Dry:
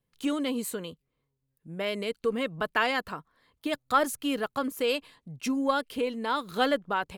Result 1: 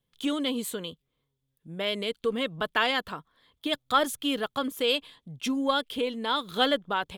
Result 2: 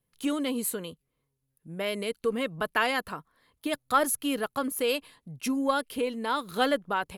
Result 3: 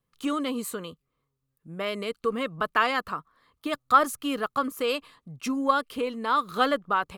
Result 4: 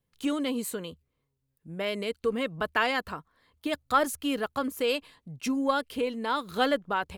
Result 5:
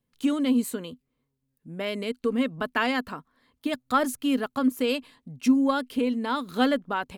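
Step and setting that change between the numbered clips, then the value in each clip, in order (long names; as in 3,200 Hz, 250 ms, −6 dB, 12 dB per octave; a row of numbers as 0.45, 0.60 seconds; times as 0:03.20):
parametric band, centre frequency: 3,400, 11,000, 1,200, 75, 250 Hertz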